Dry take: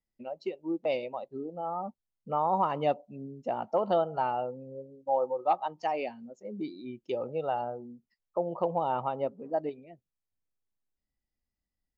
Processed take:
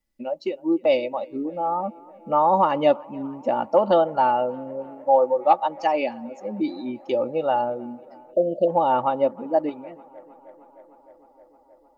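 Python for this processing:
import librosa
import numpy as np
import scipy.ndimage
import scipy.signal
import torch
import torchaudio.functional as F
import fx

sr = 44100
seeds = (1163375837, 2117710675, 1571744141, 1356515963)

y = x + 0.55 * np.pad(x, (int(3.5 * sr / 1000.0), 0))[:len(x)]
y = fx.echo_tape(y, sr, ms=309, feedback_pct=86, wet_db=-23.0, lp_hz=2600.0, drive_db=17.0, wow_cents=33)
y = fx.spec_erase(y, sr, start_s=8.33, length_s=0.35, low_hz=730.0, high_hz=2600.0)
y = y * 10.0 ** (8.0 / 20.0)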